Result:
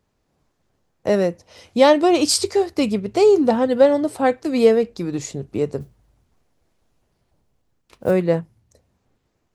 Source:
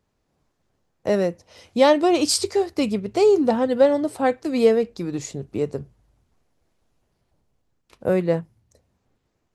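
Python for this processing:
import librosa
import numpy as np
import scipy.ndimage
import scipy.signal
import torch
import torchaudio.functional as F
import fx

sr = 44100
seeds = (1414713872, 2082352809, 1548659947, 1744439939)

y = fx.mod_noise(x, sr, seeds[0], snr_db=28, at=(5.8, 8.11))
y = y * 10.0 ** (2.5 / 20.0)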